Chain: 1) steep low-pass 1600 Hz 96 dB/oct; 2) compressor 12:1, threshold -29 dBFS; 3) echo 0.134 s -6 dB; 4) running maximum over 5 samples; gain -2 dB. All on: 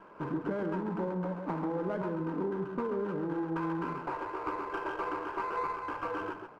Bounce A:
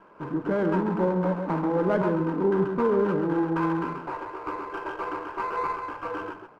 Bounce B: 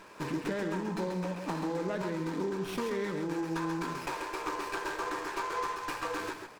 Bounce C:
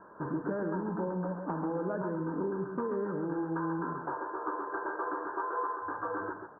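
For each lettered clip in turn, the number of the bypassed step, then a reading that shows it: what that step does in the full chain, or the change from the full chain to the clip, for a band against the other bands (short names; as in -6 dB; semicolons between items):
2, mean gain reduction 5.5 dB; 1, 2 kHz band +4.0 dB; 4, distortion -19 dB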